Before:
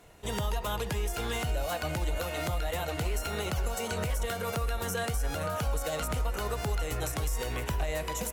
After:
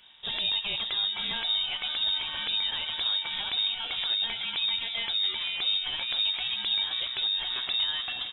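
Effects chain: frequency inversion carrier 3.7 kHz

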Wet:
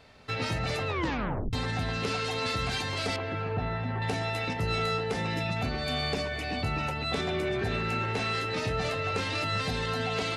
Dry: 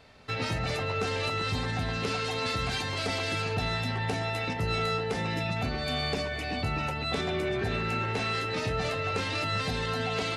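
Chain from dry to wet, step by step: 0.87 s: tape stop 0.66 s; 3.16–4.02 s: low-pass 1.7 kHz 12 dB/octave

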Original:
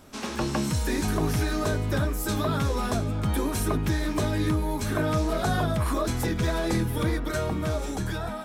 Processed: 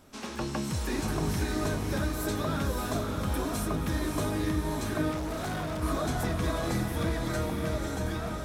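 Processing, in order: echo that smears into a reverb 599 ms, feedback 47%, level -3 dB; 5.11–5.83 s: hard clipper -25 dBFS, distortion -16 dB; trim -5.5 dB

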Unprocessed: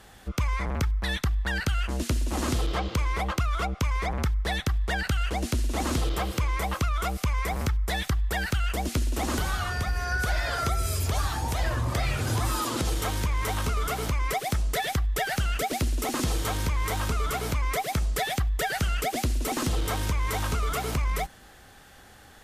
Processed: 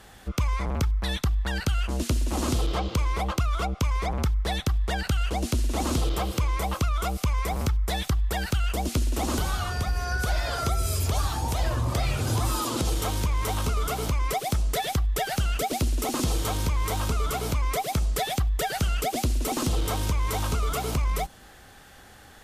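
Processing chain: dynamic bell 1.8 kHz, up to -7 dB, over -47 dBFS, Q 2; trim +1.5 dB

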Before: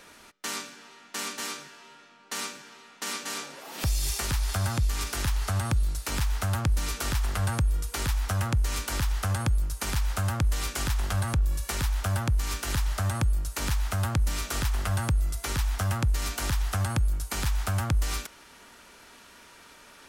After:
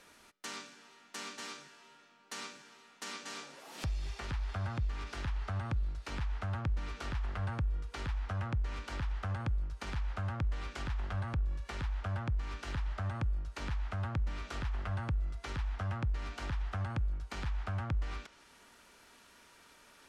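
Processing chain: low-pass that closes with the level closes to 2.6 kHz, closed at -25 dBFS; trim -8.5 dB

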